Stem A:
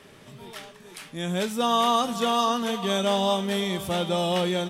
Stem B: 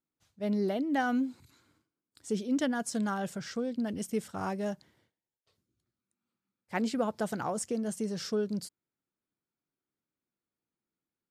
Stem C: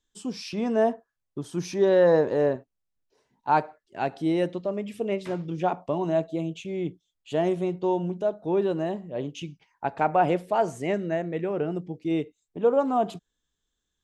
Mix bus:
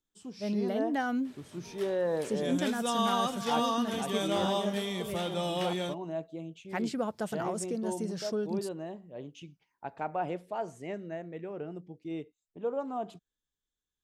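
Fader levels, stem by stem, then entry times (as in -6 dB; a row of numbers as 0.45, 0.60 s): -7.5, -2.0, -11.5 dB; 1.25, 0.00, 0.00 s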